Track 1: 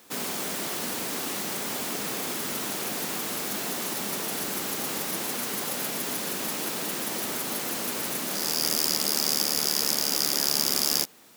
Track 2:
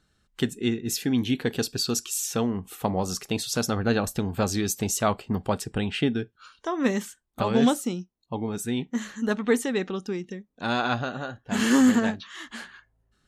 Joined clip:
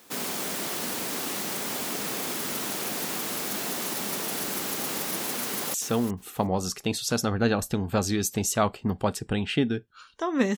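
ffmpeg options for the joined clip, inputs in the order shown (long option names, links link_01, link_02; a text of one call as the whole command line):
ffmpeg -i cue0.wav -i cue1.wav -filter_complex "[0:a]apad=whole_dur=10.57,atrim=end=10.57,atrim=end=5.742[link_01];[1:a]atrim=start=2.188:end=7.02[link_02];[link_01][link_02]acrossfade=duration=0.004:curve1=hsin:curve2=hsin,asplit=2[link_03][link_04];[link_04]afade=type=in:start_time=5.45:duration=0.01,afade=type=out:start_time=5.74:duration=0.01,aecho=0:1:360|720:0.266073|0.0399109[link_05];[link_03][link_05]amix=inputs=2:normalize=0" out.wav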